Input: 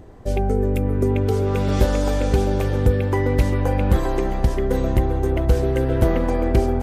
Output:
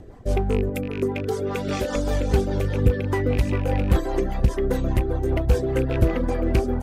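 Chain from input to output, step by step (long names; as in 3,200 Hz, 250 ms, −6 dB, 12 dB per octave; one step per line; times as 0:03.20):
loose part that buzzes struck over −15 dBFS, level −23 dBFS
reverb reduction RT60 0.76 s
0:00.69–0:01.96: high-pass filter 270 Hz 6 dB per octave
in parallel at −9 dB: wave folding −20.5 dBFS
on the sum: rotating-speaker cabinet horn 5 Hz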